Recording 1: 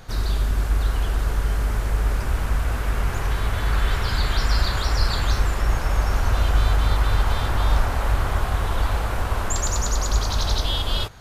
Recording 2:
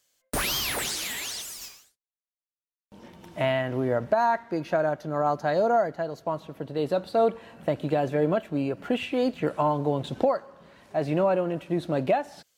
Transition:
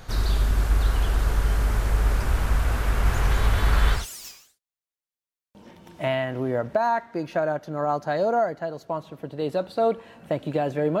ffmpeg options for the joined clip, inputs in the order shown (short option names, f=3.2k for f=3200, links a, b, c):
-filter_complex "[0:a]asplit=3[a][b][c];[a]afade=t=out:st=3.04:d=0.02[d];[b]aecho=1:1:197:0.562,afade=t=in:st=3.04:d=0.02,afade=t=out:st=4.06:d=0.02[e];[c]afade=t=in:st=4.06:d=0.02[f];[d][e][f]amix=inputs=3:normalize=0,apad=whole_dur=11,atrim=end=11,atrim=end=4.06,asetpts=PTS-STARTPTS[g];[1:a]atrim=start=1.27:end=8.37,asetpts=PTS-STARTPTS[h];[g][h]acrossfade=d=0.16:c1=tri:c2=tri"